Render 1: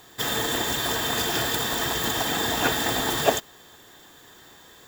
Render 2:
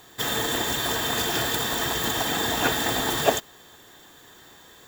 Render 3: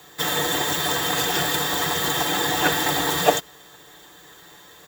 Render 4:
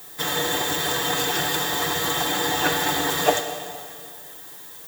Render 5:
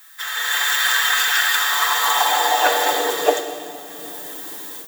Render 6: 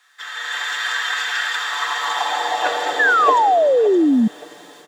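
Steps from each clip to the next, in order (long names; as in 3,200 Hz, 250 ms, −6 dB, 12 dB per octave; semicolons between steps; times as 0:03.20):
notch filter 5,000 Hz, Q 24
parametric band 200 Hz −9 dB 0.27 octaves; comb filter 7.1 ms, depth 44%; frequency shifter +30 Hz; level +2 dB
background noise violet −41 dBFS; dense smooth reverb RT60 2.2 s, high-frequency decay 1×, DRR 6 dB; level −2 dB
automatic gain control gain up to 13 dB; high-pass filter sweep 1,500 Hz → 250 Hz, 0:01.50–0:03.92; level −5 dB
repeating echo 570 ms, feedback 33%, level −10.5 dB; sound drawn into the spectrogram fall, 0:02.99–0:04.28, 210–1,800 Hz −11 dBFS; high-frequency loss of the air 90 metres; level −3 dB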